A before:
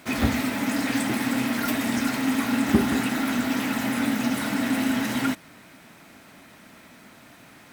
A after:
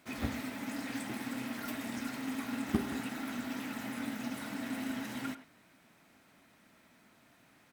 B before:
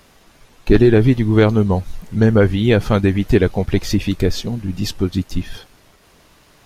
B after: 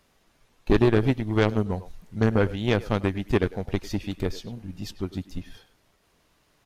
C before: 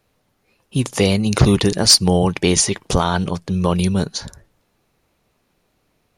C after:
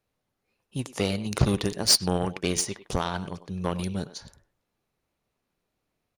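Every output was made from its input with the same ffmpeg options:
-filter_complex "[0:a]asplit=2[s0][s1];[s1]adelay=100,highpass=300,lowpass=3400,asoftclip=type=hard:threshold=0.355,volume=0.282[s2];[s0][s2]amix=inputs=2:normalize=0,aeval=exprs='0.944*(cos(1*acos(clip(val(0)/0.944,-1,1)))-cos(1*PI/2))+0.188*(cos(3*acos(clip(val(0)/0.944,-1,1)))-cos(3*PI/2))+0.00944*(cos(7*acos(clip(val(0)/0.944,-1,1)))-cos(7*PI/2))':c=same,volume=0.562"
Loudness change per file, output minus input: -13.5 LU, -9.0 LU, -10.0 LU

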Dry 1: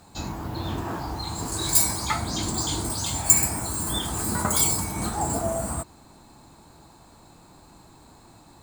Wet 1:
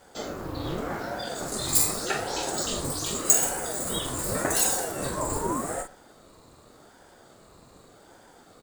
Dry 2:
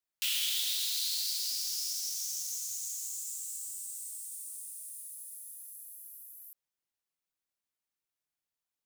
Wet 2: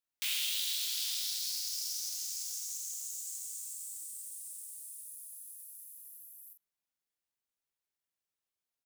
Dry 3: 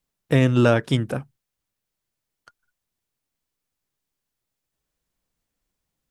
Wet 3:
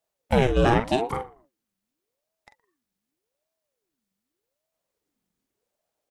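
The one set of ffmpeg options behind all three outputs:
-filter_complex "[0:a]asplit=2[s0][s1];[s1]adelay=44,volume=0.447[s2];[s0][s2]amix=inputs=2:normalize=0,asplit=2[s3][s4];[s4]adelay=118,lowpass=f=1300:p=1,volume=0.106,asplit=2[s5][s6];[s6]adelay=118,lowpass=f=1300:p=1,volume=0.26[s7];[s3][s5][s7]amix=inputs=3:normalize=0,aeval=exprs='val(0)*sin(2*PI*420*n/s+420*0.55/0.85*sin(2*PI*0.85*n/s))':c=same"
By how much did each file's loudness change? -2.0 LU, -2.0 LU, -3.0 LU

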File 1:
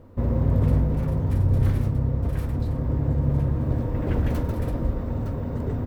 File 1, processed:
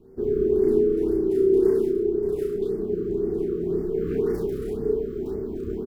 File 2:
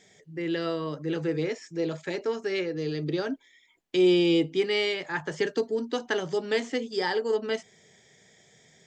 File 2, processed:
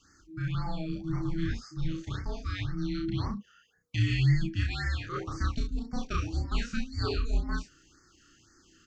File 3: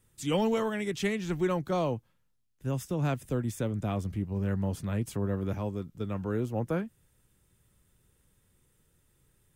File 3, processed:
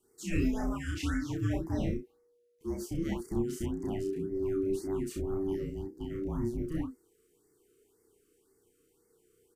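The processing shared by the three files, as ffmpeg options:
-af "aecho=1:1:32.07|64.14:0.891|0.501,afreqshift=-480,afftfilt=real='re*(1-between(b*sr/1024,760*pow(3200/760,0.5+0.5*sin(2*PI*1.9*pts/sr))/1.41,760*pow(3200/760,0.5+0.5*sin(2*PI*1.9*pts/sr))*1.41))':imag='im*(1-between(b*sr/1024,760*pow(3200/760,0.5+0.5*sin(2*PI*1.9*pts/sr))/1.41,760*pow(3200/760,0.5+0.5*sin(2*PI*1.9*pts/sr))*1.41))':win_size=1024:overlap=0.75,volume=0.562"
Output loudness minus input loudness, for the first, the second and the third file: +0.5 LU, -4.5 LU, -2.5 LU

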